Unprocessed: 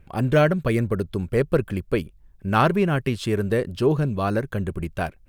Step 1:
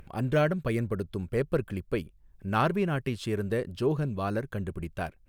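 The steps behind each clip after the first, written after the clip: upward compressor, threshold -35 dBFS; trim -7 dB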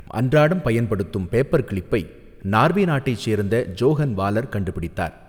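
Schroeder reverb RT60 1.9 s, combs from 30 ms, DRR 19.5 dB; trim +9 dB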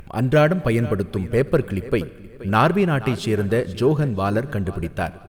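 feedback delay 476 ms, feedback 30%, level -17.5 dB

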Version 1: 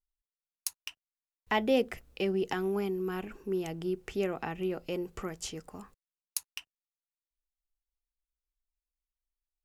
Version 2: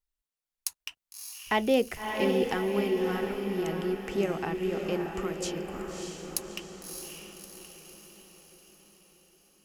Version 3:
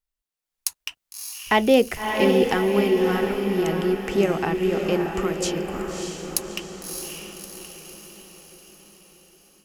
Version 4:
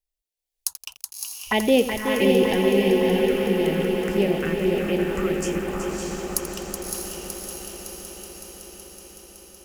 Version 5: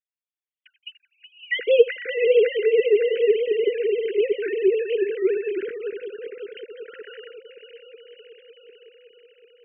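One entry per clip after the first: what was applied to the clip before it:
echo that smears into a reverb 617 ms, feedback 54%, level -4 dB; trim +2 dB
level rider gain up to 8 dB
touch-sensitive phaser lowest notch 210 Hz, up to 1.3 kHz, full sweep at -17.5 dBFS; on a send: multi-head delay 187 ms, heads second and third, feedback 71%, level -8 dB; on the sum: bit-crushed delay 85 ms, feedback 55%, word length 6-bit, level -13 dB
formants replaced by sine waves; Chebyshev band-stop 500–1500 Hz, order 4; time-frequency box 6.87–7.31 s, 990–2000 Hz +11 dB; trim +1.5 dB

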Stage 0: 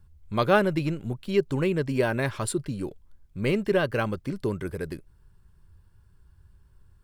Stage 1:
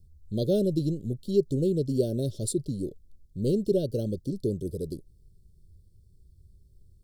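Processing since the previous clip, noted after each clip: inverse Chebyshev band-stop 840–2500 Hz, stop band 40 dB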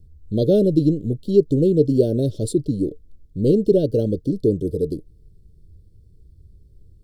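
tone controls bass 0 dB, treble -9 dB; small resonant body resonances 300/450 Hz, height 8 dB, ringing for 90 ms; trim +7.5 dB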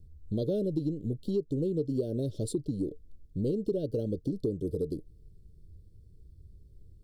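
compression 4:1, threshold -24 dBFS, peak gain reduction 13.5 dB; trim -4.5 dB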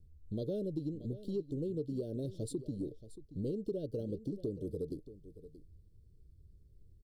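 delay 628 ms -15 dB; trim -7 dB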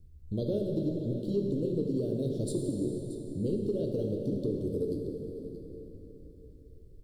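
plate-style reverb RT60 4 s, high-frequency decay 0.7×, DRR 0.5 dB; trim +4.5 dB

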